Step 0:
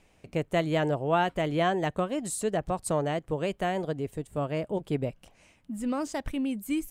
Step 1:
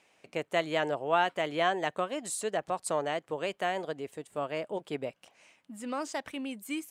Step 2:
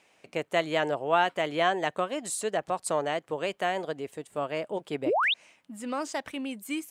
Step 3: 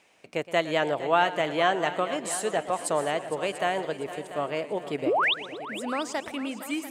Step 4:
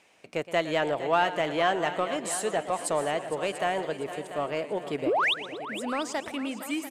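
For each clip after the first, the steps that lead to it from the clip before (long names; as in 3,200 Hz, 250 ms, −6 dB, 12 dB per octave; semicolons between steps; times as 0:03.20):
meter weighting curve A
sound drawn into the spectrogram rise, 0:05.06–0:05.34, 270–4,000 Hz −27 dBFS; level +2.5 dB
echo machine with several playback heads 230 ms, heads second and third, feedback 40%, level −14.5 dB; feedback echo with a swinging delay time 115 ms, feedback 48%, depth 128 cents, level −16.5 dB; level +1.5 dB
in parallel at −6 dB: soft clipping −27 dBFS, distortion −7 dB; on the sum: downsampling to 32,000 Hz; level −3 dB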